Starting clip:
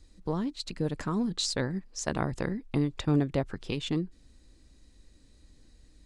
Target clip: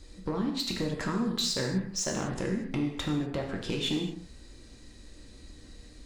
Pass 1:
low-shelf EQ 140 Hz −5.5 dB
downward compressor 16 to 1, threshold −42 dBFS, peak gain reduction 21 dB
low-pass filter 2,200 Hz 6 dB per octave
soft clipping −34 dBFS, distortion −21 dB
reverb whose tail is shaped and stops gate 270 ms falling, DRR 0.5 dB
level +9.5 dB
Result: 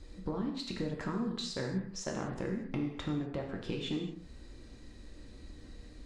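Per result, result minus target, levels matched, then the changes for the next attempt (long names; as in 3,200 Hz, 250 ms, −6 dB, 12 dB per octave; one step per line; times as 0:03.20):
8,000 Hz band −6.5 dB; downward compressor: peak gain reduction +6 dB
change: low-pass filter 8,600 Hz 6 dB per octave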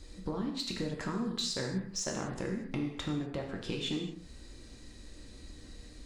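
downward compressor: peak gain reduction +6 dB
change: downward compressor 16 to 1, threshold −35.5 dBFS, peak gain reduction 15 dB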